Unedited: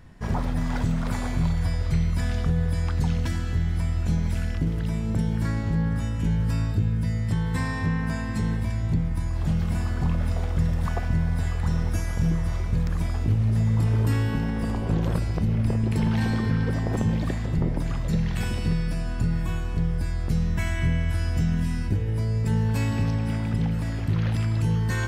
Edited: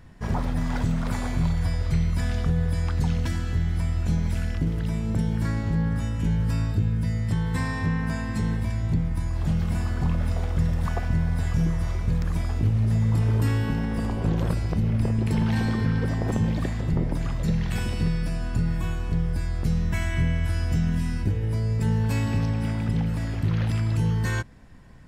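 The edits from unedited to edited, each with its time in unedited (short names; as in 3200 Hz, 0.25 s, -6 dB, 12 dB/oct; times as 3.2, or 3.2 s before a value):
11.54–12.19 cut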